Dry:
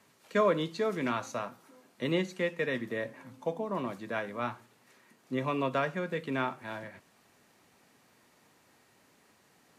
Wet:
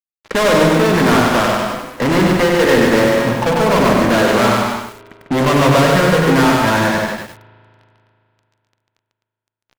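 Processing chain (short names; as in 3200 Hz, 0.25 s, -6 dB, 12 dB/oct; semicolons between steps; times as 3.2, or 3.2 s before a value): LPF 1800 Hz 24 dB/oct; notches 50/100/150/200/250/300/350/400/450 Hz; in parallel at +2.5 dB: compressor 4:1, threshold -44 dBFS, peak gain reduction 18 dB; on the sum: added harmonics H 7 -23 dB, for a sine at -13 dBFS; fuzz box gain 47 dB, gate -55 dBFS; loudspeakers at several distances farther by 50 m -5 dB, 88 m -9 dB; spring tank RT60 2.8 s, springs 37 ms, chirp 60 ms, DRR 19.5 dB; lo-fi delay 97 ms, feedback 35%, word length 6-bit, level -3 dB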